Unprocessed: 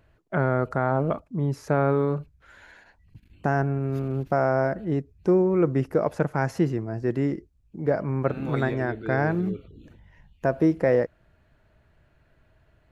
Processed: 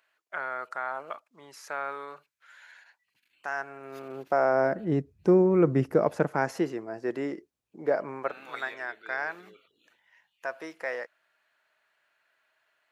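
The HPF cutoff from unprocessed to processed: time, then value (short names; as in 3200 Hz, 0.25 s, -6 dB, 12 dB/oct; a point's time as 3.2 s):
3.48 s 1300 Hz
4.5 s 350 Hz
5 s 110 Hz
5.88 s 110 Hz
6.73 s 420 Hz
8.05 s 420 Hz
8.47 s 1200 Hz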